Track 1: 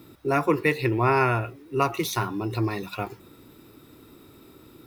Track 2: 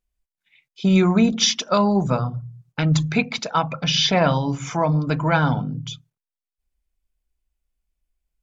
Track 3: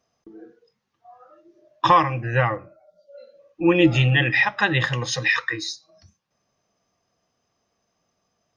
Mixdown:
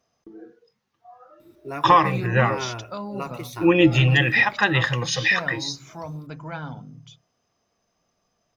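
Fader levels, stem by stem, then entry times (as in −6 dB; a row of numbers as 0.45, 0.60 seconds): −9.5, −15.0, +0.5 decibels; 1.40, 1.20, 0.00 seconds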